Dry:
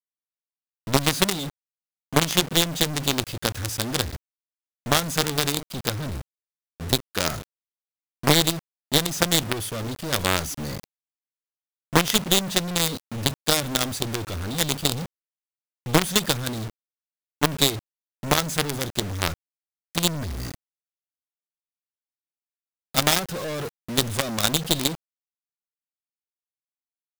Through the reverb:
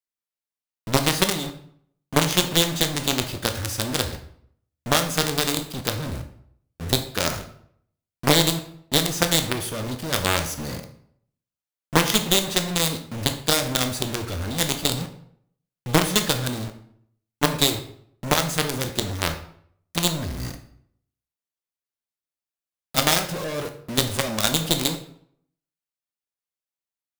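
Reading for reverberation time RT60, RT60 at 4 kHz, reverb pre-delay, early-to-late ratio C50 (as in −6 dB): 0.65 s, 0.45 s, 14 ms, 10.5 dB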